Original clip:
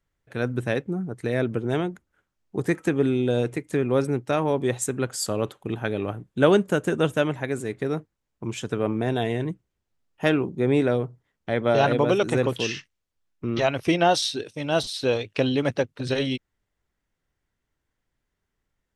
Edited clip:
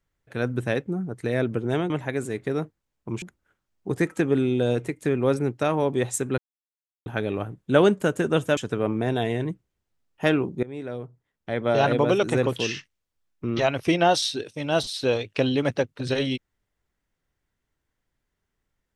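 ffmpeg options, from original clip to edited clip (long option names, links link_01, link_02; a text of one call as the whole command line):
ffmpeg -i in.wav -filter_complex "[0:a]asplit=7[link_01][link_02][link_03][link_04][link_05][link_06][link_07];[link_01]atrim=end=1.902[link_08];[link_02]atrim=start=7.248:end=8.572[link_09];[link_03]atrim=start=1.898:end=5.06,asetpts=PTS-STARTPTS,afade=type=out:start_time=3.158:duration=0.004:curve=hsin[link_10];[link_04]atrim=start=5.06:end=5.74,asetpts=PTS-STARTPTS,volume=0[link_11];[link_05]atrim=start=5.74:end=7.252,asetpts=PTS-STARTPTS,afade=type=in:duration=0.004:curve=hsin[link_12];[link_06]atrim=start=8.568:end=10.63,asetpts=PTS-STARTPTS,afade=type=out:start_time=2.058:duration=0.004:curve=hsin:silence=0.0891251[link_13];[link_07]atrim=start=10.63,asetpts=PTS-STARTPTS,afade=type=in:duration=1.31:silence=0.0891251[link_14];[link_08][link_09]acrossfade=duration=0.004:curve1=hsin:curve2=hsin[link_15];[link_10][link_11][link_12]concat=n=3:v=0:a=1[link_16];[link_15][link_16]acrossfade=duration=0.004:curve1=hsin:curve2=hsin[link_17];[link_13][link_14]concat=n=2:v=0:a=1[link_18];[link_17][link_18]acrossfade=duration=0.004:curve1=hsin:curve2=hsin" out.wav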